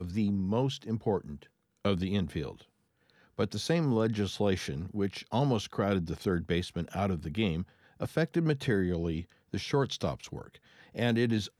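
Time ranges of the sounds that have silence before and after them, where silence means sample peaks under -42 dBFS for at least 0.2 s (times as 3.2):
1.85–2.61
3.39–7.64
8–9.23
9.53–10.55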